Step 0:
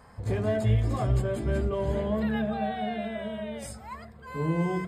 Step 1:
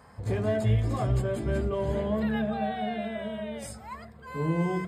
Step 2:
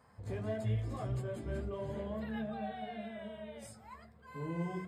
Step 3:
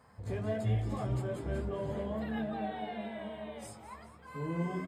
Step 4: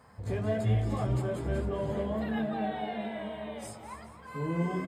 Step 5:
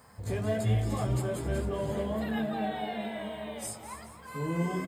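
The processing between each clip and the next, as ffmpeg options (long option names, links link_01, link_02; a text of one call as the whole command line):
ffmpeg -i in.wav -af "highpass=59" out.wav
ffmpeg -i in.wav -af "flanger=delay=7.6:depth=5.1:regen=-42:speed=1.6:shape=triangular,volume=-7dB" out.wav
ffmpeg -i in.wav -filter_complex "[0:a]asplit=8[link_01][link_02][link_03][link_04][link_05][link_06][link_07][link_08];[link_02]adelay=210,afreqshift=97,volume=-14dB[link_09];[link_03]adelay=420,afreqshift=194,volume=-18.3dB[link_10];[link_04]adelay=630,afreqshift=291,volume=-22.6dB[link_11];[link_05]adelay=840,afreqshift=388,volume=-26.9dB[link_12];[link_06]adelay=1050,afreqshift=485,volume=-31.2dB[link_13];[link_07]adelay=1260,afreqshift=582,volume=-35.5dB[link_14];[link_08]adelay=1470,afreqshift=679,volume=-39.8dB[link_15];[link_01][link_09][link_10][link_11][link_12][link_13][link_14][link_15]amix=inputs=8:normalize=0,volume=3dB" out.wav
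ffmpeg -i in.wav -af "aecho=1:1:264:0.2,volume=4dB" out.wav
ffmpeg -i in.wav -af "crystalizer=i=2:c=0" out.wav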